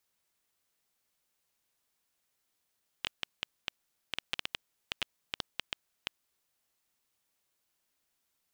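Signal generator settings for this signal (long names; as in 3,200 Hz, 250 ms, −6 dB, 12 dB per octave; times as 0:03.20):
Geiger counter clicks 6.5 per second −14 dBFS 3.23 s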